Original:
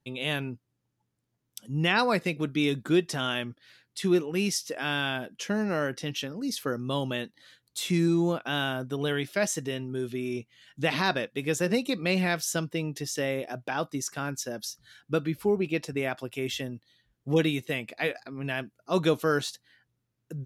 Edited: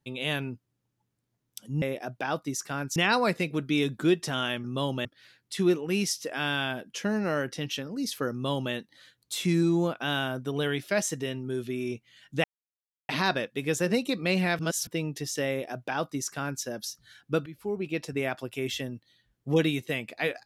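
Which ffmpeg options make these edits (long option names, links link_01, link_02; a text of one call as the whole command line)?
ffmpeg -i in.wav -filter_complex "[0:a]asplit=9[link_01][link_02][link_03][link_04][link_05][link_06][link_07][link_08][link_09];[link_01]atrim=end=1.822[link_10];[link_02]atrim=start=13.288:end=14.432[link_11];[link_03]atrim=start=1.818:end=3.502[link_12];[link_04]atrim=start=6.768:end=7.182[link_13];[link_05]atrim=start=3.498:end=10.89,asetpts=PTS-STARTPTS,afade=type=out:start_time=7.388:duration=0.004:curve=hsin,apad=pad_dur=0.65[link_14];[link_06]atrim=start=10.89:end=12.392,asetpts=PTS-STARTPTS,afade=type=in:duration=0.004:curve=hsin[link_15];[link_07]atrim=start=12.388:end=12.672,asetpts=PTS-STARTPTS,areverse[link_16];[link_08]atrim=start=12.668:end=15.26,asetpts=PTS-STARTPTS,afade=type=out:start_time=2.588:duration=0.004:curve=hsin:silence=0.158489[link_17];[link_09]atrim=start=15.26,asetpts=PTS-STARTPTS,afade=type=in:duration=0.68:silence=0.158489[link_18];[link_10][link_11]acrossfade=duration=0.004:curve1=hsin:curve2=hsin[link_19];[link_19][link_12]acrossfade=duration=0.004:curve1=hsin:curve2=hsin[link_20];[link_20][link_13]acrossfade=duration=0.004:curve1=hsin:curve2=hsin[link_21];[link_14][link_15]concat=n=2:v=0:a=1[link_22];[link_21][link_22]acrossfade=duration=0.004:curve1=hsin:curve2=hsin[link_23];[link_23][link_16]acrossfade=duration=0.004:curve1=hsin:curve2=hsin[link_24];[link_17][link_18]concat=n=2:v=0:a=1[link_25];[link_24][link_25]acrossfade=duration=0.004:curve1=hsin:curve2=hsin" out.wav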